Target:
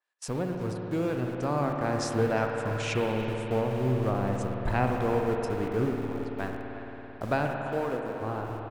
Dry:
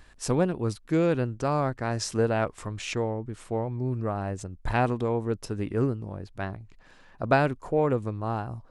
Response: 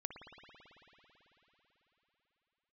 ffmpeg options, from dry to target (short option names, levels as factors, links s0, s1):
-filter_complex "[0:a]asettb=1/sr,asplit=3[s0][s1][s2];[s0]atrim=end=7.584[s3];[s1]atrim=start=7.58:end=8.21,asetpts=PTS-STARTPTS,afade=t=in:d=0.004:c=qsin,afade=t=out:st=0.626:d=0.004:c=qsin,highpass=f=280:p=1[s4];[s2]atrim=start=8.206[s5];[s3][s4]acrossfade=d=0.004:c1=hsin:c2=qsin[s6];[s6][s5]acrossfade=d=0.004:c1=qsin:c2=hsin,asplit=2[s7][s8];[s8]alimiter=limit=0.0891:level=0:latency=1:release=439,volume=1.33[s9];[s7][s9]amix=inputs=2:normalize=0,agate=range=0.0794:threshold=0.0141:ratio=16:detection=peak,acrossover=split=440[s10][s11];[s10]aeval=exprs='val(0)*gte(abs(val(0)),0.0335)':c=same[s12];[s12][s11]amix=inputs=2:normalize=0,asplit=2[s13][s14];[s14]adelay=350,highpass=300,lowpass=3400,asoftclip=type=hard:threshold=0.224,volume=0.2[s15];[s13][s15]amix=inputs=2:normalize=0,dynaudnorm=f=250:g=13:m=3.76[s16];[1:a]atrim=start_sample=2205[s17];[s16][s17]afir=irnorm=-1:irlink=0,adynamicequalizer=threshold=0.01:dfrequency=3000:dqfactor=0.7:tfrequency=3000:tqfactor=0.7:attack=5:release=100:ratio=0.375:range=2:mode=cutabove:tftype=highshelf,volume=0.422"